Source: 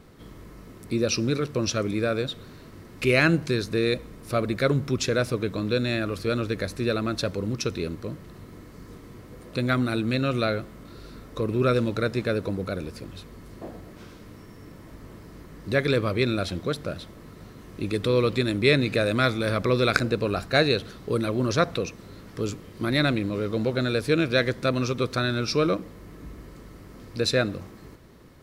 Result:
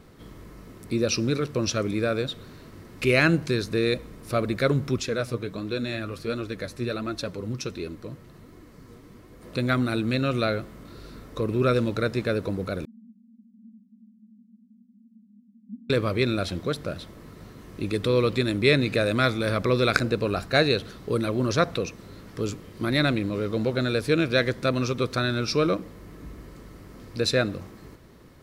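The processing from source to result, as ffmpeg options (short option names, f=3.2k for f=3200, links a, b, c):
-filter_complex "[0:a]asettb=1/sr,asplit=3[a][b][c];[a]atrim=end=5.004[d];[b]atrim=start=5:end=9.43,asetpts=PTS-STARTPTS,afade=t=in:d=0.004:c=qsin,afade=t=out:st=4.426:d=0.004:c=qsin,flanger=delay=2.7:depth=5.8:regen=48:speed=1.4:shape=sinusoidal[e];[c]atrim=start=9.426[f];[d][e]acrossfade=d=0.004:c1=hsin:c2=qsin[g];[g][f]acrossfade=d=0.004:c1=qsin:c2=hsin,asettb=1/sr,asplit=3[h][i][j];[h]atrim=end=12.854[k];[i]atrim=start=12.85:end=15.9,asetpts=PTS-STARTPTS,afade=t=in:d=0.004:c=qsin,afade=t=out:st=3.046:d=0.004:c=qsin,asuperpass=centerf=220:order=8:qfactor=4.6[l];[j]atrim=start=15.896[m];[k][l]acrossfade=d=0.004:c1=hsin:c2=qsin[n];[n][m]acrossfade=d=0.004:c1=qsin:c2=hsin"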